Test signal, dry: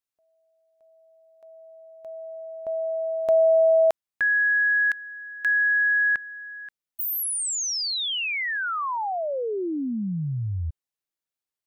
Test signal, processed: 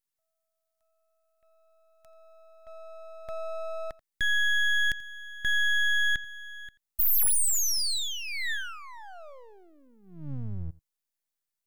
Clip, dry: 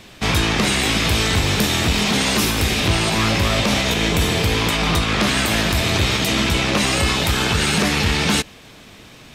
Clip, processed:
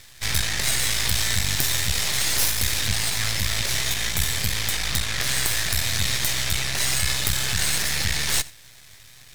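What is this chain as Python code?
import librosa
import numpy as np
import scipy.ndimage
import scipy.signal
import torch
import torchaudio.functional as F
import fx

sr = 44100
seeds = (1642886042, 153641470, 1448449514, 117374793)

p1 = fx.curve_eq(x, sr, hz=(140.0, 210.0, 320.0, 600.0, 1200.0, 1800.0, 2700.0, 4000.0, 11000.0), db=(0, -25, -23, -11, -10, 5, -3, 5, 11))
p2 = np.maximum(p1, 0.0)
p3 = p2 + fx.echo_single(p2, sr, ms=85, db=-21.5, dry=0)
y = p3 * 10.0 ** (-2.5 / 20.0)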